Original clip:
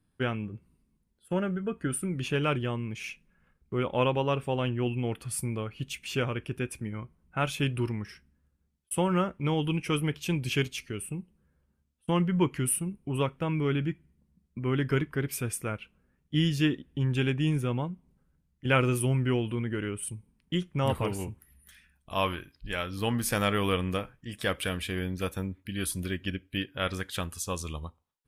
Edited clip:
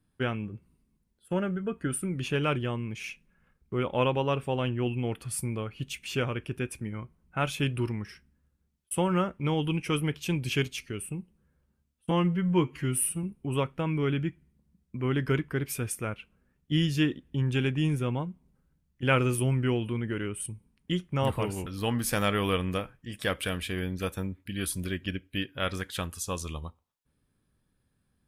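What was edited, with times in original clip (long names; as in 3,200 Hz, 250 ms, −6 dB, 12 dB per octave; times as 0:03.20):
0:12.11–0:12.86: time-stretch 1.5×
0:21.29–0:22.86: remove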